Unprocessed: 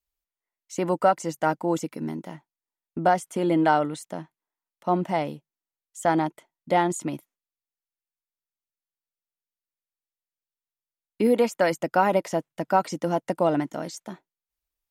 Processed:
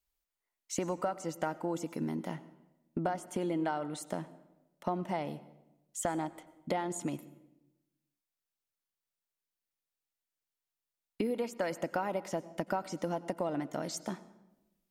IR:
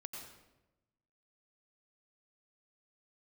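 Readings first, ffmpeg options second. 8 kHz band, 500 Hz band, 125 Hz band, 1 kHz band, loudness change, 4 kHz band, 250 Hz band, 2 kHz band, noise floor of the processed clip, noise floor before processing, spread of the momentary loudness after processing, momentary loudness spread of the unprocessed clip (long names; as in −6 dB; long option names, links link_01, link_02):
−4.0 dB, −11.0 dB, −8.5 dB, −13.0 dB, −11.5 dB, −8.0 dB, −9.5 dB, −11.5 dB, below −85 dBFS, below −85 dBFS, 9 LU, 15 LU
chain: -filter_complex "[0:a]acompressor=threshold=-33dB:ratio=6,asplit=2[link_01][link_02];[1:a]atrim=start_sample=2205[link_03];[link_02][link_03]afir=irnorm=-1:irlink=0,volume=-8.5dB[link_04];[link_01][link_04]amix=inputs=2:normalize=0"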